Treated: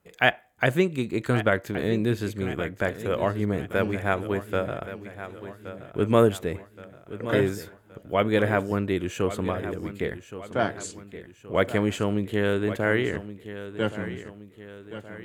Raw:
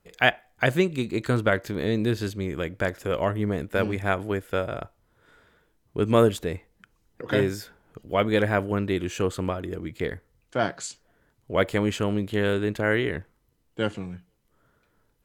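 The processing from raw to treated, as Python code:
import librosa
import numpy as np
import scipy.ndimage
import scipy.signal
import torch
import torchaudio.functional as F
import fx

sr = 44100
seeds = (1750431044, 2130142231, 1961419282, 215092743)

y = scipy.signal.sosfilt(scipy.signal.butter(2, 68.0, 'highpass', fs=sr, output='sos'), x)
y = fx.peak_eq(y, sr, hz=4800.0, db=-5.5, octaves=0.82)
y = fx.echo_feedback(y, sr, ms=1122, feedback_pct=48, wet_db=-13.0)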